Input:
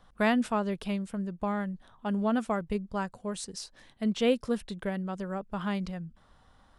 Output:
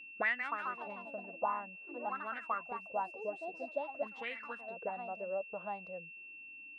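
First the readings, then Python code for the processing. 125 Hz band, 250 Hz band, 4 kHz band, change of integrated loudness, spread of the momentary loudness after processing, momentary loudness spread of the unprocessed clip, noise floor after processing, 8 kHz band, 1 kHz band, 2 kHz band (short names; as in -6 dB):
under -20 dB, -23.0 dB, -15.0 dB, -8.0 dB, 10 LU, 11 LU, -52 dBFS, under -30 dB, -2.5 dB, -0.5 dB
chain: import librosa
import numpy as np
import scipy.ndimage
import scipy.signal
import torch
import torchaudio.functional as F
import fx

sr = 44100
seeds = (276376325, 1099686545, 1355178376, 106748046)

y = fx.echo_pitch(x, sr, ms=218, semitones=3, count=3, db_per_echo=-6.0)
y = fx.auto_wah(y, sr, base_hz=290.0, top_hz=2000.0, q=7.2, full_db=-21.5, direction='up')
y = y + 10.0 ** (-53.0 / 20.0) * np.sin(2.0 * np.pi * 2700.0 * np.arange(len(y)) / sr)
y = F.gain(torch.from_numpy(y), 4.5).numpy()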